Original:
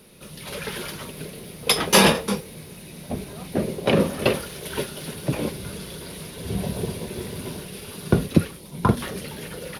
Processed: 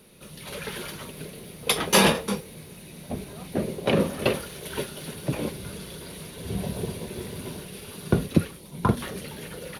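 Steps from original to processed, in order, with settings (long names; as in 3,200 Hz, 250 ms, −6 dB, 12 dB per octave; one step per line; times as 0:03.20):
notch filter 5,100 Hz, Q 16
level −3 dB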